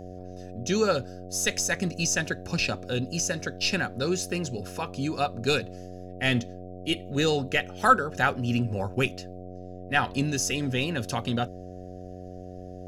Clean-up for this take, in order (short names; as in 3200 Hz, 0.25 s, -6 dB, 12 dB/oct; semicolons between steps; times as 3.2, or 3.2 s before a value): de-hum 91.3 Hz, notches 8